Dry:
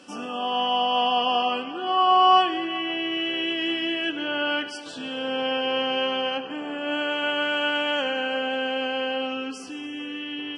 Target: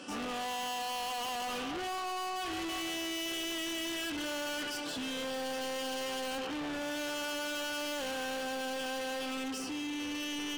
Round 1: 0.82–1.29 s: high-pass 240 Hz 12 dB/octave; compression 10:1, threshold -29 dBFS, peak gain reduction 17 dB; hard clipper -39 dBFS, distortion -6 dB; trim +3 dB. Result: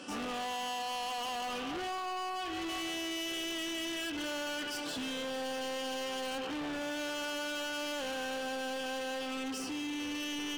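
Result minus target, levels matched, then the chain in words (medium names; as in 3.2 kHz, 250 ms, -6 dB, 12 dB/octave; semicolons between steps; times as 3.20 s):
compression: peak gain reduction +7 dB
0.82–1.29 s: high-pass 240 Hz 12 dB/octave; compression 10:1, threshold -21.5 dBFS, peak gain reduction 10 dB; hard clipper -39 dBFS, distortion -4 dB; trim +3 dB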